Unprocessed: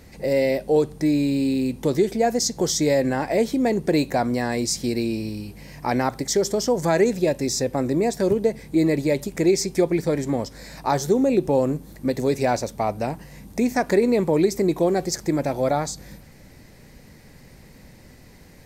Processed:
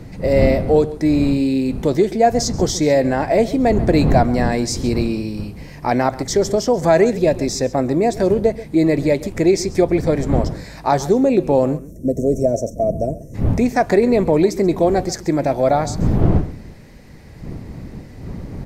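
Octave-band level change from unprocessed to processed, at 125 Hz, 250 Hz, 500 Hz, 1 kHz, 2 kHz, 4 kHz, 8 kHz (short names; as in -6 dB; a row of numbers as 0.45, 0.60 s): +8.5, +4.5, +5.0, +6.0, +3.5, +1.0, 0.0 dB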